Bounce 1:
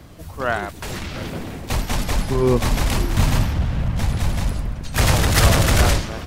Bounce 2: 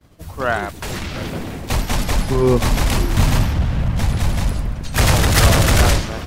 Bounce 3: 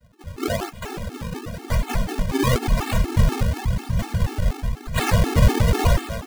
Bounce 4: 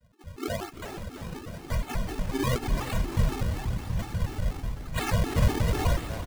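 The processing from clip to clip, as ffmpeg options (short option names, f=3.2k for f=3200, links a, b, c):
-filter_complex "[0:a]agate=range=-33dB:threshold=-34dB:ratio=3:detection=peak,asplit=2[a][b];[b]acontrast=40,volume=2.5dB[c];[a][c]amix=inputs=2:normalize=0,volume=-8dB"
-af "acrusher=samples=37:mix=1:aa=0.000001:lfo=1:lforange=59.2:lforate=0.95,afftfilt=real='re*gt(sin(2*PI*4.1*pts/sr)*(1-2*mod(floor(b*sr/1024/230),2)),0)':imag='im*gt(sin(2*PI*4.1*pts/sr)*(1-2*mod(floor(b*sr/1024/230),2)),0)':win_size=1024:overlap=0.75,volume=-1dB"
-af "aecho=1:1:340|680|1020|1360|1700|2040:0.224|0.132|0.0779|0.046|0.0271|0.016,volume=-7.5dB"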